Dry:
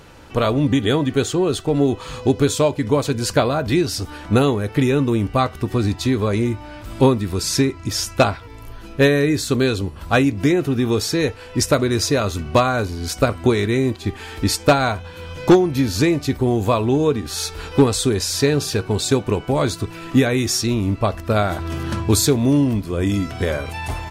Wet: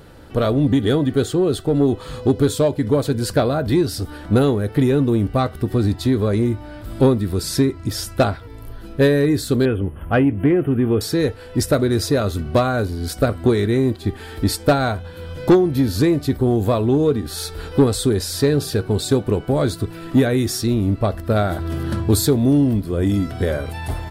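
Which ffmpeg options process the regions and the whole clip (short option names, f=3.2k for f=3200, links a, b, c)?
-filter_complex "[0:a]asettb=1/sr,asplit=3[a][b][c];[a]atrim=end=9.654[d];[b]atrim=start=9.65:end=11.01,asetpts=PTS-STARTPTS,afade=t=in:d=0.004:c=qsin,afade=t=out:st=1.356:d=0.004:c=qsin,acrossover=split=6300[e][f];[f]acompressor=threshold=-56dB:ratio=4:attack=1:release=60[g];[e][g]amix=inputs=2:normalize=0,asuperstop=centerf=5500:order=20:qfactor=0.99[h];[c]atrim=start=11.006[i];[d][h]acrossfade=d=0.004:c1=hsin:c2=qsin[j];[j][i]acrossfade=d=0.004:c1=qsin:c2=hsin,equalizer=f=1k:t=o:w=0.67:g=-7,equalizer=f=2.5k:t=o:w=0.67:g=-9,equalizer=f=6.3k:t=o:w=0.67:g=-10,acontrast=52,volume=-4dB"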